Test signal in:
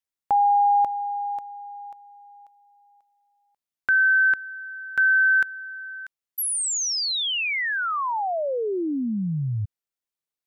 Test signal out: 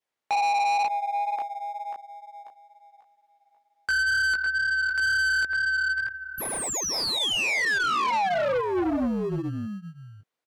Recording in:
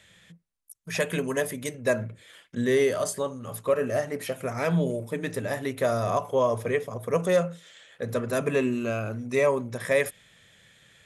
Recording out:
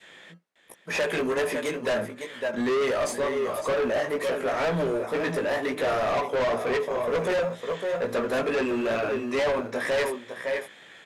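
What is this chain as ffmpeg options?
ffmpeg -i in.wav -filter_complex "[0:a]aecho=1:1:556:0.266,flanger=delay=16:depth=3.8:speed=2.1,adynamicequalizer=threshold=0.0158:dfrequency=880:dqfactor=0.72:tfrequency=880:tqfactor=0.72:attack=5:release=100:ratio=0.375:range=1.5:mode=cutabove:tftype=bell,highpass=230,asplit=2[link_01][link_02];[link_02]acrusher=samples=30:mix=1:aa=0.000001,volume=-11.5dB[link_03];[link_01][link_03]amix=inputs=2:normalize=0,asplit=2[link_04][link_05];[link_05]highpass=frequency=720:poles=1,volume=19dB,asoftclip=type=tanh:threshold=-10.5dB[link_06];[link_04][link_06]amix=inputs=2:normalize=0,lowpass=frequency=1400:poles=1,volume=-6dB,asoftclip=type=tanh:threshold=-25.5dB,volume=3.5dB" out.wav

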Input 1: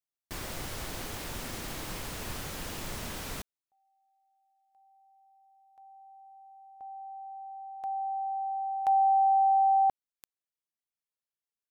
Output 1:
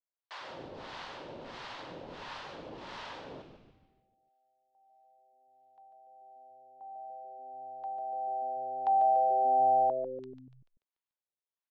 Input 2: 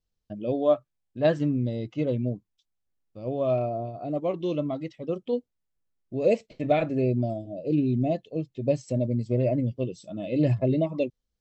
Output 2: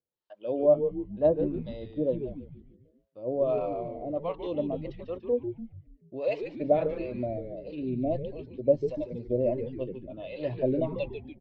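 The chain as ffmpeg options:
ffmpeg -i in.wav -filter_complex "[0:a]acrossover=split=700[link_01][link_02];[link_01]aeval=exprs='val(0)*(1-1/2+1/2*cos(2*PI*1.5*n/s))':channel_layout=same[link_03];[link_02]aeval=exprs='val(0)*(1-1/2-1/2*cos(2*PI*1.5*n/s))':channel_layout=same[link_04];[link_03][link_04]amix=inputs=2:normalize=0,highpass=200,equalizer=frequency=210:width_type=q:width=4:gain=-7,equalizer=frequency=550:width_type=q:width=4:gain=6,equalizer=frequency=940:width_type=q:width=4:gain=7,equalizer=frequency=2300:width_type=q:width=4:gain=-4,lowpass=frequency=4200:width=0.5412,lowpass=frequency=4200:width=1.3066,asplit=7[link_05][link_06][link_07][link_08][link_09][link_10][link_11];[link_06]adelay=145,afreqshift=-130,volume=-8dB[link_12];[link_07]adelay=290,afreqshift=-260,volume=-14.2dB[link_13];[link_08]adelay=435,afreqshift=-390,volume=-20.4dB[link_14];[link_09]adelay=580,afreqshift=-520,volume=-26.6dB[link_15];[link_10]adelay=725,afreqshift=-650,volume=-32.8dB[link_16];[link_11]adelay=870,afreqshift=-780,volume=-39dB[link_17];[link_05][link_12][link_13][link_14][link_15][link_16][link_17]amix=inputs=7:normalize=0" out.wav

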